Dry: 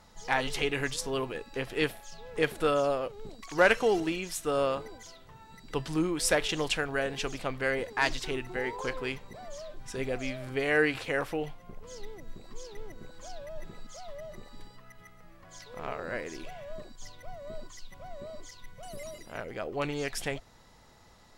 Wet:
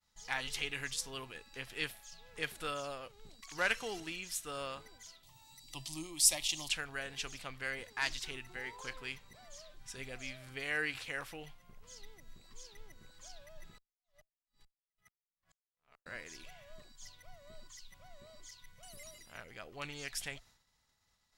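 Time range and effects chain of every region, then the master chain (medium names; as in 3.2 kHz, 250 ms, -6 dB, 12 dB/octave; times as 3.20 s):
5.23–6.69 s: treble shelf 3.2 kHz +8 dB + upward compressor, threshold -41 dBFS + static phaser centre 300 Hz, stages 8
13.78–16.06 s: delay 117 ms -15.5 dB + compression 8:1, threshold -43 dBFS + sawtooth tremolo in dB swelling 2.3 Hz, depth 39 dB
whole clip: expander -49 dBFS; amplifier tone stack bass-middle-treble 5-5-5; trim +3.5 dB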